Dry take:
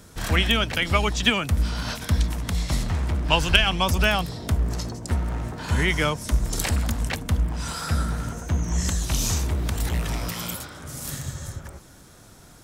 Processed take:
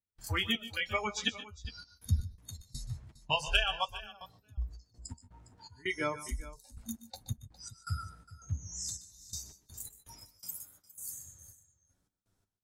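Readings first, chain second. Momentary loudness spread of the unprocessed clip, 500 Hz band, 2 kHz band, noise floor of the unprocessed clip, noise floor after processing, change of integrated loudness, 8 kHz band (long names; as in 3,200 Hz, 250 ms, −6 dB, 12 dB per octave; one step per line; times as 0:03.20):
11 LU, −12.5 dB, −11.5 dB, −49 dBFS, −79 dBFS, −12.0 dB, −11.5 dB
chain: noise reduction from a noise print of the clip's start 26 dB
low-shelf EQ 92 Hz +7 dB
in parallel at −0.5 dB: downward compressor, threshold −32 dBFS, peak gain reduction 19 dB
on the sum: gate pattern ".xx.xxx..x.x.x" 82 BPM −24 dB
flanger 0.3 Hz, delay 8.9 ms, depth 2.4 ms, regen −26%
multi-tap delay 125/146/408 ms −16/−18/−17 dB
level −7 dB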